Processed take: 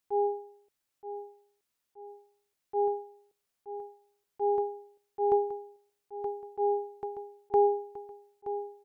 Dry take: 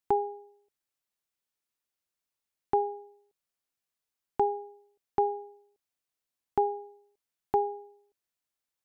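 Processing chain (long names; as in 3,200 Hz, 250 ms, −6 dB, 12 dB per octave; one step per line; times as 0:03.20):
dynamic equaliser 460 Hz, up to +6 dB, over −40 dBFS, Q 2.1
on a send: repeating echo 924 ms, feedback 43%, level −12 dB
on the sum: volume swells 160 ms
level +5 dB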